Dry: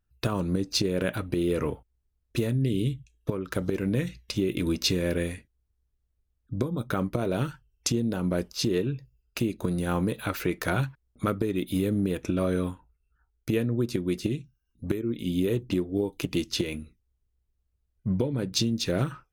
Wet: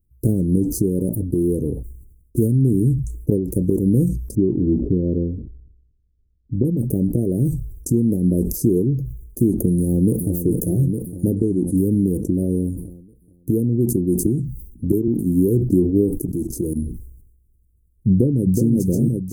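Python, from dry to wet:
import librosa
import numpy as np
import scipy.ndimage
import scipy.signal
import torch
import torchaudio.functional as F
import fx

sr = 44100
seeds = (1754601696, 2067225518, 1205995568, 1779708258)

y = fx.lowpass(x, sr, hz=1000.0, slope=24, at=(4.35, 6.65))
y = fx.echo_throw(y, sr, start_s=9.77, length_s=0.55, ms=430, feedback_pct=65, wet_db=-8.5)
y = fx.lowpass(y, sr, hz=9000.0, slope=24, at=(11.34, 11.76), fade=0.02)
y = fx.band_squash(y, sr, depth_pct=40, at=(14.25, 15.08))
y = fx.level_steps(y, sr, step_db=17, at=(16.15, 16.76))
y = fx.echo_throw(y, sr, start_s=18.09, length_s=0.62, ms=370, feedback_pct=55, wet_db=-2.5)
y = fx.rider(y, sr, range_db=10, speed_s=2.0)
y = scipy.signal.sosfilt(scipy.signal.cheby2(4, 70, [1200.0, 3300.0], 'bandstop', fs=sr, output='sos'), y)
y = fx.sustainer(y, sr, db_per_s=61.0)
y = y * 10.0 ** (9.0 / 20.0)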